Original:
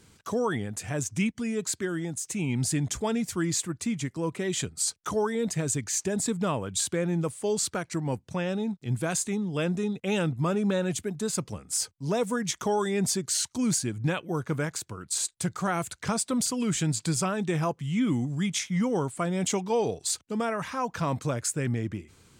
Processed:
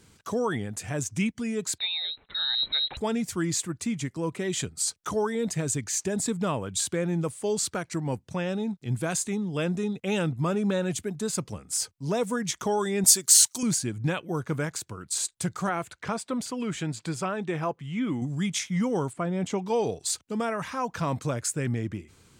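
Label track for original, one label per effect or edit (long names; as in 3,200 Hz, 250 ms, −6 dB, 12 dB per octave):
1.780000	2.970000	voice inversion scrambler carrier 4,000 Hz
13.040000	13.630000	RIAA equalisation recording
15.690000	18.220000	bass and treble bass −6 dB, treble −11 dB
19.130000	19.620000	low-pass filter 1,700 Hz 6 dB per octave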